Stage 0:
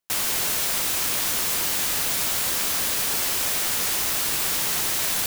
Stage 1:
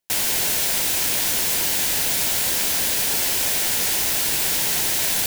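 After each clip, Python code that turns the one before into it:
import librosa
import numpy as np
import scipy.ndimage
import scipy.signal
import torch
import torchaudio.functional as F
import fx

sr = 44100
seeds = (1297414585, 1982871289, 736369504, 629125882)

y = fx.peak_eq(x, sr, hz=1200.0, db=-10.0, octaves=0.31)
y = y * 10.0 ** (3.0 / 20.0)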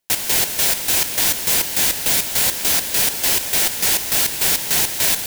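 y = fx.chopper(x, sr, hz=3.4, depth_pct=65, duty_pct=50)
y = y * 10.0 ** (5.0 / 20.0)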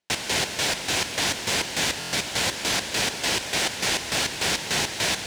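y = scipy.signal.sosfilt(scipy.signal.butter(2, 58.0, 'highpass', fs=sr, output='sos'), x)
y = fx.air_absorb(y, sr, metres=90.0)
y = fx.buffer_glitch(y, sr, at_s=(1.99,), block=1024, repeats=5)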